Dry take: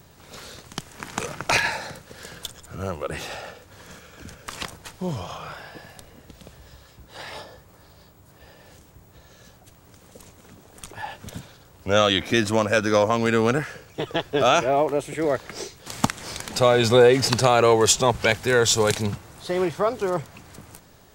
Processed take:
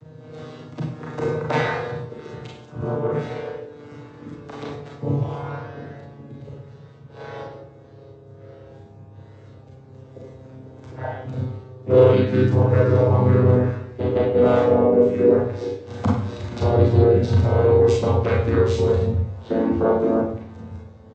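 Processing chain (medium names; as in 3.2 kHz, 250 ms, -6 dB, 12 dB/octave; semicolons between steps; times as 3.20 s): vocoder on a note that slides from D#3, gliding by -6 st; treble shelf 2.5 kHz -6.5 dB; compression 5:1, threshold -23 dBFS, peak gain reduction 11 dB; harmony voices -5 st -7 dB, -4 st -4 dB, -3 st -8 dB; small resonant body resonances 470/3800 Hz, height 9 dB, ringing for 30 ms; reverberation RT60 0.60 s, pre-delay 31 ms, DRR -3.5 dB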